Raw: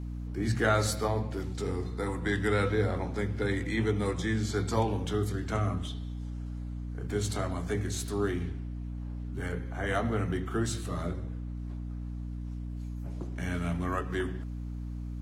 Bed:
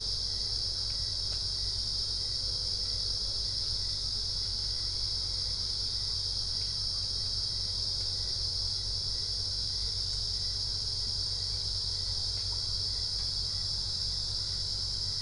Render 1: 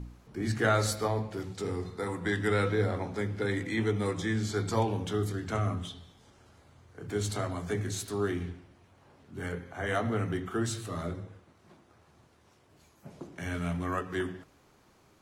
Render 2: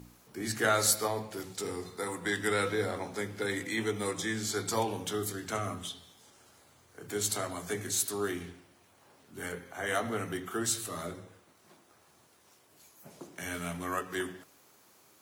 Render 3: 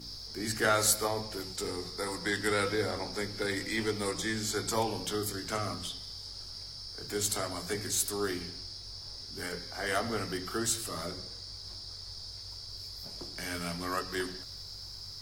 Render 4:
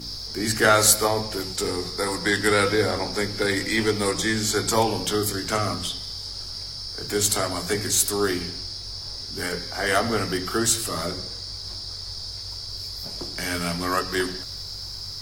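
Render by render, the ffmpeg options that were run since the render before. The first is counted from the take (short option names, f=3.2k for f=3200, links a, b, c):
-af "bandreject=f=60:t=h:w=4,bandreject=f=120:t=h:w=4,bandreject=f=180:t=h:w=4,bandreject=f=240:t=h:w=4,bandreject=f=300:t=h:w=4"
-af "highpass=f=310:p=1,aemphasis=mode=production:type=50fm"
-filter_complex "[1:a]volume=-11dB[a];[0:a][a]amix=inputs=2:normalize=0"
-af "volume=9.5dB"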